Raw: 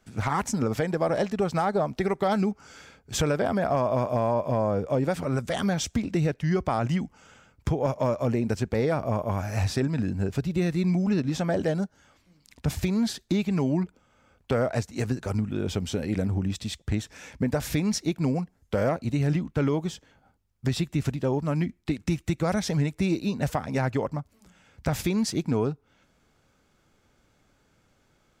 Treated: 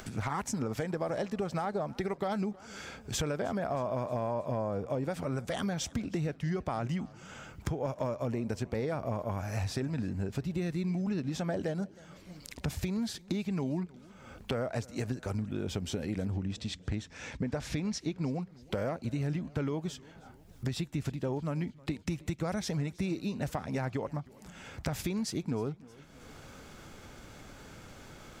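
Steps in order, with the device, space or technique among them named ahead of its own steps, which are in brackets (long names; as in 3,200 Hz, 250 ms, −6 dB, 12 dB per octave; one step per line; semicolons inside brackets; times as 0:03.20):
0:16.33–0:18.41: low-pass filter 6,500 Hz 12 dB per octave
upward and downward compression (upward compression, threshold −30 dBFS; downward compressor 3 to 1, threshold −28 dBFS, peak gain reduction 6.5 dB)
feedback echo with a swinging delay time 315 ms, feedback 59%, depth 120 cents, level −22.5 dB
level −3 dB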